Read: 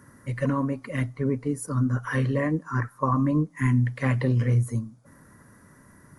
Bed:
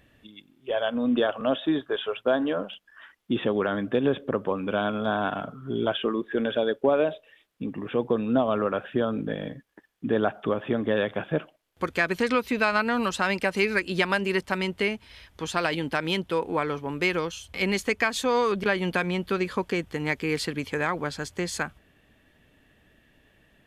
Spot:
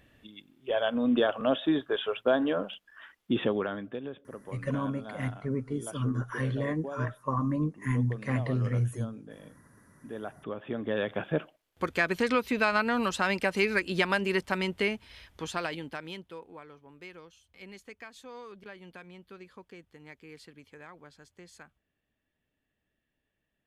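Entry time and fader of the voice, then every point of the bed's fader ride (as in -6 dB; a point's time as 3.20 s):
4.25 s, -6.0 dB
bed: 3.45 s -1.5 dB
4.12 s -17 dB
10.04 s -17 dB
11.21 s -2.5 dB
15.30 s -2.5 dB
16.65 s -22 dB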